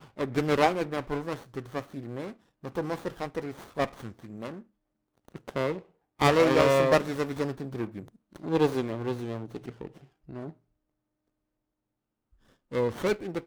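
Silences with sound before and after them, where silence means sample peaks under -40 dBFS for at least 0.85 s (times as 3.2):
10.51–12.72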